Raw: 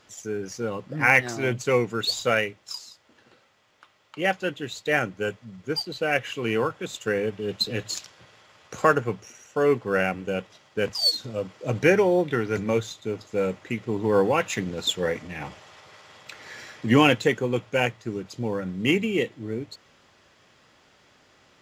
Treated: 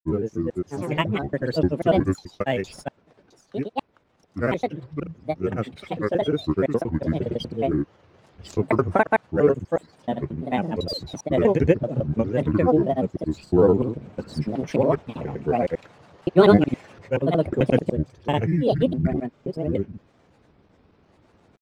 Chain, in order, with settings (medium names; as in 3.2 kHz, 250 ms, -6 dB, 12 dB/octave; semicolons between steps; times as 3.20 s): slices played last to first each 178 ms, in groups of 4; tilt shelf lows +9.5 dB; granulator, grains 20 per s, pitch spread up and down by 7 st; trim -1 dB